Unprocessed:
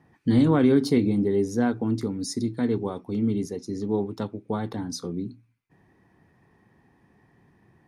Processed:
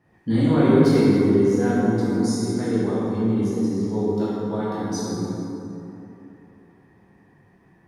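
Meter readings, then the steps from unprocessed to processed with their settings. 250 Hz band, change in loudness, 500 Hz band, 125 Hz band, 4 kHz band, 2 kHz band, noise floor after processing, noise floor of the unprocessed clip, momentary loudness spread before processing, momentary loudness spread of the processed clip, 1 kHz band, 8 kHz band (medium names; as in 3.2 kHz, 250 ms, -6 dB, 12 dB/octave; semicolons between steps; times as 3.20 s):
+4.0 dB, +4.0 dB, +5.0 dB, +4.5 dB, +2.0 dB, +4.5 dB, -56 dBFS, -63 dBFS, 13 LU, 13 LU, +5.0 dB, +3.5 dB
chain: plate-style reverb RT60 3.1 s, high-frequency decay 0.5×, DRR -9.5 dB; trim -5.5 dB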